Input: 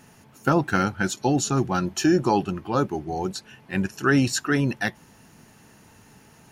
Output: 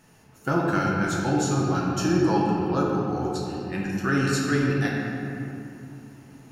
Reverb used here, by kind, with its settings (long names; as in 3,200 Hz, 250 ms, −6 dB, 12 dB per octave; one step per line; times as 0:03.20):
rectangular room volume 130 cubic metres, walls hard, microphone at 0.62 metres
level −6.5 dB